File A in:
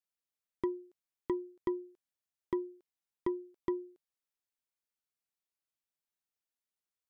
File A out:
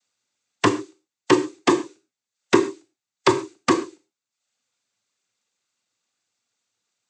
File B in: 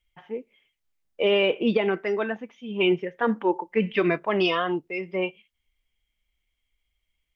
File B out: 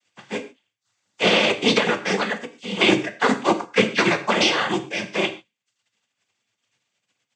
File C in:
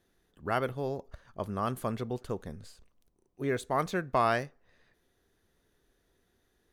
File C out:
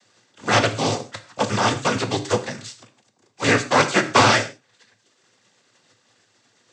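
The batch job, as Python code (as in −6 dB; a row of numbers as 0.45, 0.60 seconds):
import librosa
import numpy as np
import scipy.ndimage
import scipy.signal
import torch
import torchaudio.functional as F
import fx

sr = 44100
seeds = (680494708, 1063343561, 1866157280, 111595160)

y = fx.spec_flatten(x, sr, power=0.46)
y = fx.dereverb_blind(y, sr, rt60_s=0.65)
y = fx.noise_vocoder(y, sr, seeds[0], bands=16)
y = fx.rev_gated(y, sr, seeds[1], gate_ms=160, shape='falling', drr_db=7.5)
y = librosa.util.normalize(y) * 10.0 ** (-2 / 20.0)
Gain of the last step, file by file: +17.5, +5.0, +13.5 decibels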